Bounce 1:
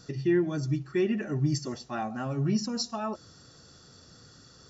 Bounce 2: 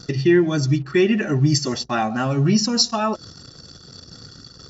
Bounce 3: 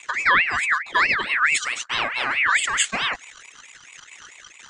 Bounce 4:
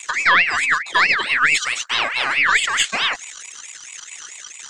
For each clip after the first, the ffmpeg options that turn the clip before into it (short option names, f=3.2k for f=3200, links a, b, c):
-filter_complex "[0:a]anlmdn=0.00158,equalizer=f=3.8k:t=o:w=2.1:g=6.5,asplit=2[a][b];[b]acompressor=threshold=-35dB:ratio=6,volume=-1.5dB[c];[a][c]amix=inputs=2:normalize=0,volume=7.5dB"
-af "aeval=exprs='val(0)*sin(2*PI*1900*n/s+1900*0.3/4.6*sin(2*PI*4.6*n/s))':c=same"
-filter_complex "[0:a]acrossover=split=4400[a][b];[b]acompressor=threshold=-47dB:ratio=4:attack=1:release=60[c];[a][c]amix=inputs=2:normalize=0,bass=f=250:g=-7,treble=f=4k:g=14,aeval=exprs='0.562*(cos(1*acos(clip(val(0)/0.562,-1,1)))-cos(1*PI/2))+0.0708*(cos(2*acos(clip(val(0)/0.562,-1,1)))-cos(2*PI/2))':c=same,volume=2.5dB"